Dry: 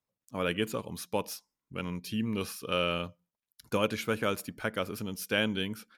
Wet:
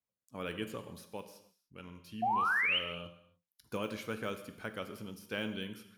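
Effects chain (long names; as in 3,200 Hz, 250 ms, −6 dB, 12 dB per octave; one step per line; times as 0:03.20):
de-essing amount 85%
0:01.06–0:03.06: flanger 1.9 Hz, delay 8.3 ms, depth 3.6 ms, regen −78%
0:02.22–0:02.79: sound drawn into the spectrogram rise 690–3,200 Hz −22 dBFS
reverb whose tail is shaped and stops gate 330 ms falling, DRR 8 dB
level −8.5 dB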